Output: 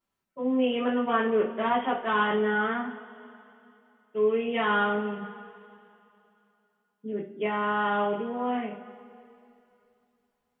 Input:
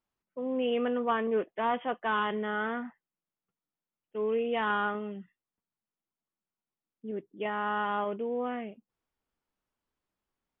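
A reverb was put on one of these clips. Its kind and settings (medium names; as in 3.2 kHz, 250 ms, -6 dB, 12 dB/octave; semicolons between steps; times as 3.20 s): two-slope reverb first 0.31 s, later 2.9 s, from -21 dB, DRR -5.5 dB; trim -1.5 dB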